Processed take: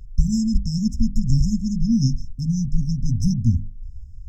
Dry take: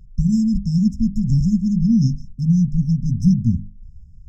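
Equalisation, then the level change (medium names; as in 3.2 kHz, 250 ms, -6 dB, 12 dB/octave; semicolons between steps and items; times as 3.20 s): peaking EQ 180 Hz -13.5 dB 0.99 oct; +6.0 dB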